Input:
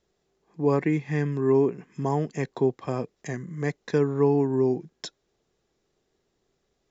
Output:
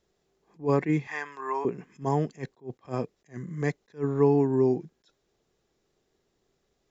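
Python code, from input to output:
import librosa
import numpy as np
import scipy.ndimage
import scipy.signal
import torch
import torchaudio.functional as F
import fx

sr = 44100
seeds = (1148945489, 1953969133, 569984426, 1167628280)

y = fx.highpass_res(x, sr, hz=1000.0, q=2.2, at=(1.07, 1.65))
y = fx.attack_slew(y, sr, db_per_s=280.0)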